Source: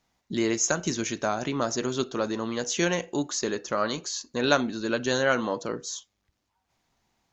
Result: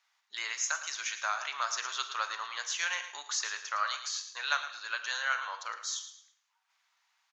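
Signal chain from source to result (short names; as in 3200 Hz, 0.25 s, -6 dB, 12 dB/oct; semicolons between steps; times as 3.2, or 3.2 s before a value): HPF 1100 Hz 24 dB/oct; high shelf 6800 Hz -11.5 dB; vocal rider within 4 dB 0.5 s; on a send: feedback echo 0.111 s, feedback 32%, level -12 dB; on the sum: Schroeder reverb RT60 0.61 s, combs from 33 ms, DRR 12 dB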